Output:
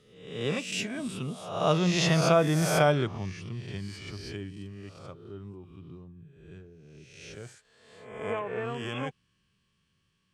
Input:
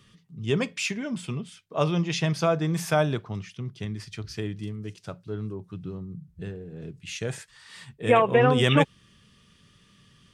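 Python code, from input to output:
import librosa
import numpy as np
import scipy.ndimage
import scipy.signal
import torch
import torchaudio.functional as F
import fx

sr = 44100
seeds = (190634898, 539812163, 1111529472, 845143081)

y = fx.spec_swells(x, sr, rise_s=0.83)
y = fx.doppler_pass(y, sr, speed_mps=24, closest_m=22.0, pass_at_s=2.36)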